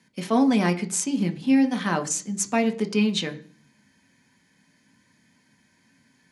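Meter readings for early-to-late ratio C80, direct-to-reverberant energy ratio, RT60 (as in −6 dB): 20.0 dB, 4.5 dB, 0.45 s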